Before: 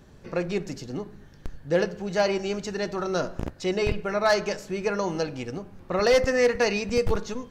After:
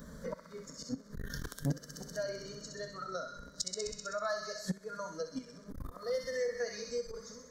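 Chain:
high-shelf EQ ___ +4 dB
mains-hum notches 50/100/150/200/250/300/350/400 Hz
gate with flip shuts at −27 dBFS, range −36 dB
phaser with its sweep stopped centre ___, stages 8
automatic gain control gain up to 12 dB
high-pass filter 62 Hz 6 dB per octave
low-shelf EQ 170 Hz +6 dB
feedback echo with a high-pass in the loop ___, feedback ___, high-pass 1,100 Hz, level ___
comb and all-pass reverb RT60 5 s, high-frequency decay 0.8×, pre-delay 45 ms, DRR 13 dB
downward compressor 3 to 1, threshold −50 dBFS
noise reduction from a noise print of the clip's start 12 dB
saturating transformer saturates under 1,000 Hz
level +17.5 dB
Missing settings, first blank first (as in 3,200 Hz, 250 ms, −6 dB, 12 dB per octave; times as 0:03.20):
7,000 Hz, 530 Hz, 64 ms, 82%, −4 dB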